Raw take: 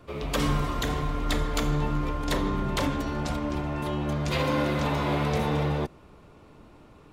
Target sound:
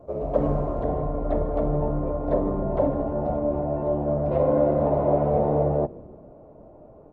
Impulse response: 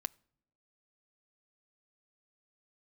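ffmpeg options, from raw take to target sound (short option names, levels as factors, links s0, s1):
-filter_complex "[0:a]lowpass=f=630:t=q:w=4.9,asplit=5[s0][s1][s2][s3][s4];[s1]adelay=154,afreqshift=-110,volume=0.0891[s5];[s2]adelay=308,afreqshift=-220,volume=0.0507[s6];[s3]adelay=462,afreqshift=-330,volume=0.0288[s7];[s4]adelay=616,afreqshift=-440,volume=0.0166[s8];[s0][s5][s6][s7][s8]amix=inputs=5:normalize=0" -ar 48000 -c:a libopus -b:a 16k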